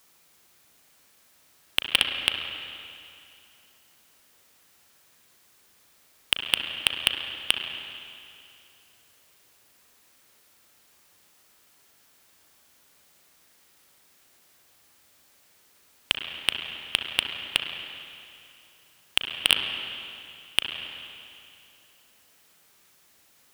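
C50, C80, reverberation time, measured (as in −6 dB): 4.0 dB, 5.0 dB, 2.6 s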